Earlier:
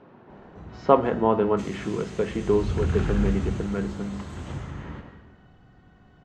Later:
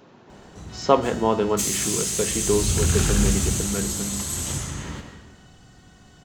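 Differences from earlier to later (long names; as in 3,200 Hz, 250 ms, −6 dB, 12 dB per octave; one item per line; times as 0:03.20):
background +3.5 dB
master: remove low-pass filter 1,900 Hz 12 dB per octave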